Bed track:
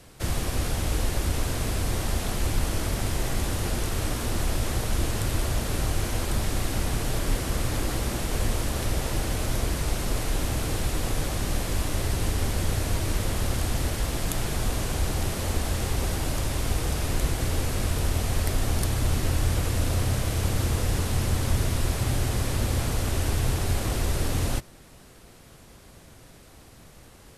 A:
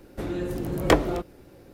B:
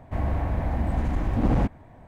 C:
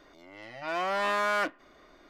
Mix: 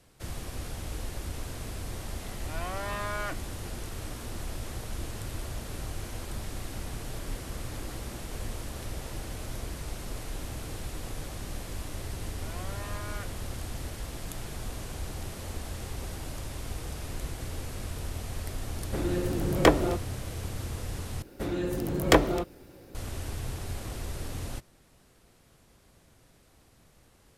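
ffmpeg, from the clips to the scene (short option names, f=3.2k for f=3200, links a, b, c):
-filter_complex "[3:a]asplit=2[a][b];[1:a]asplit=2[c][d];[0:a]volume=-10.5dB[e];[d]highshelf=f=3.1k:g=5[f];[e]asplit=2[g][h];[g]atrim=end=21.224[i];[f]atrim=end=1.73,asetpts=PTS-STARTPTS,volume=-1dB[j];[h]atrim=start=22.946[k];[a]atrim=end=2.09,asetpts=PTS-STARTPTS,volume=-7.5dB,afade=t=in:d=0.004:c=hsin,afade=t=out:st=2.086:d=0.004:c=hsin,adelay=1860[l];[b]atrim=end=2.09,asetpts=PTS-STARTPTS,volume=-15.5dB,afade=t=in:d=0.004:c=hsin,afade=t=out:st=2.086:d=0.004:c=hsin,adelay=11790[m];[c]atrim=end=1.73,asetpts=PTS-STARTPTS,volume=-0.5dB,afade=t=in:d=0.004:c=hsin,afade=t=out:st=1.726:d=0.004:c=hsin,adelay=18750[n];[i][j]acrossfade=d=0.004:c1=hsin:c2=hsin[o];[o][k]acrossfade=d=0.004:c1=hsin:c2=hsin[p];[p][l][m][n]amix=inputs=4:normalize=0"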